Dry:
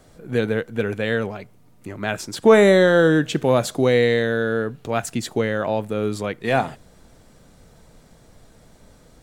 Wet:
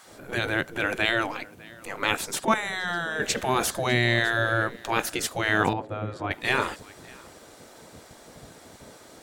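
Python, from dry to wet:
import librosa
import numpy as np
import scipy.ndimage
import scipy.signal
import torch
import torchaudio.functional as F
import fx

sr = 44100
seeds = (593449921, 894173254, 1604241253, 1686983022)

p1 = fx.over_compress(x, sr, threshold_db=-23.0, ratio=-0.5)
p2 = x + (p1 * librosa.db_to_amplitude(-2.0))
p3 = p2 + 10.0 ** (-24.0 / 20.0) * np.pad(p2, (int(602 * sr / 1000.0), 0))[:len(p2)]
p4 = fx.level_steps(p3, sr, step_db=10, at=(2.45, 3.2))
p5 = fx.bandpass_q(p4, sr, hz=300.0, q=0.58, at=(5.73, 6.31))
y = fx.spec_gate(p5, sr, threshold_db=-10, keep='weak')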